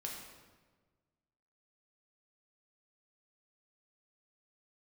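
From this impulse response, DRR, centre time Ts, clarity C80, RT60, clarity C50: -2.0 dB, 59 ms, 4.5 dB, 1.4 s, 2.5 dB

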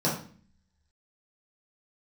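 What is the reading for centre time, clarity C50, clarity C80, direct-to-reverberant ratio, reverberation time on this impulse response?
34 ms, 5.0 dB, 10.0 dB, -7.0 dB, 0.45 s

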